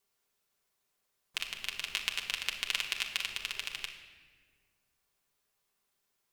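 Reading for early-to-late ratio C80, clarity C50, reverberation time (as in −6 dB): 9.5 dB, 7.5 dB, 1.5 s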